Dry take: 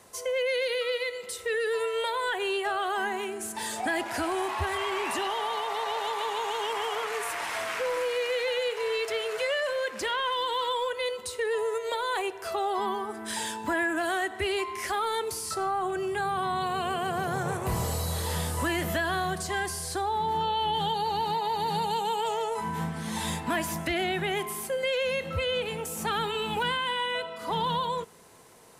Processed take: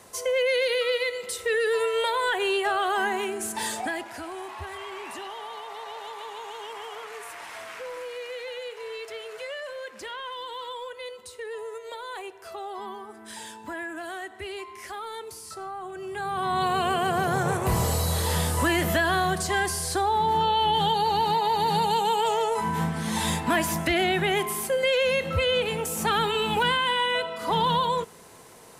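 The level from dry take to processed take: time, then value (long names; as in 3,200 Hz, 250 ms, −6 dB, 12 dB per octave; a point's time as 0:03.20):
0:03.67 +4 dB
0:04.14 −7.5 dB
0:15.93 −7.5 dB
0:16.62 +5 dB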